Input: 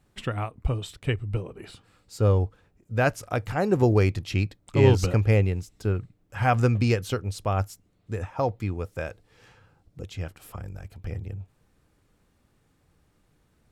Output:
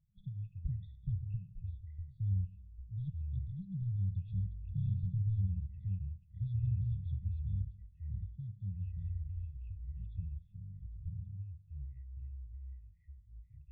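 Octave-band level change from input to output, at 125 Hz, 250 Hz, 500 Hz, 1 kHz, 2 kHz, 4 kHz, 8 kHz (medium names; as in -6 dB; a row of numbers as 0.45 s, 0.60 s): -10.0 dB, -19.0 dB, under -40 dB, under -40 dB, under -40 dB, under -35 dB, under -35 dB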